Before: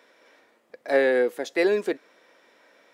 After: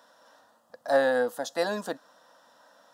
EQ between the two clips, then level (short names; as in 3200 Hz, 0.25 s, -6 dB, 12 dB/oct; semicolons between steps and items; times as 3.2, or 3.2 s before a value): fixed phaser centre 930 Hz, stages 4; +4.5 dB